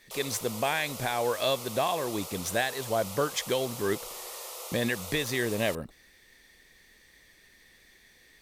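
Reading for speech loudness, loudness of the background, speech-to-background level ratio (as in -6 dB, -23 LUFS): -30.5 LUFS, -39.0 LUFS, 8.5 dB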